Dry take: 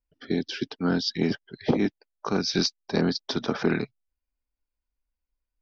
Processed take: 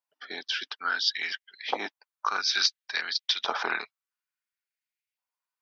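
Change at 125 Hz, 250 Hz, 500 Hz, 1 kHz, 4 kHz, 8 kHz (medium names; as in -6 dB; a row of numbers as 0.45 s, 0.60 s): under -30 dB, -24.0 dB, -13.0 dB, +4.5 dB, +4.0 dB, no reading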